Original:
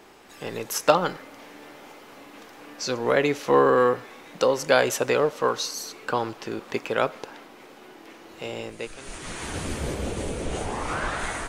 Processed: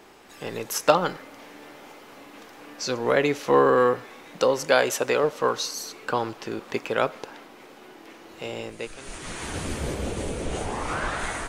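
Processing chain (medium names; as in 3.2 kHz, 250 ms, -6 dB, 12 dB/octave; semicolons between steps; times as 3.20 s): 4.66–5.24 s: bass shelf 130 Hz -10 dB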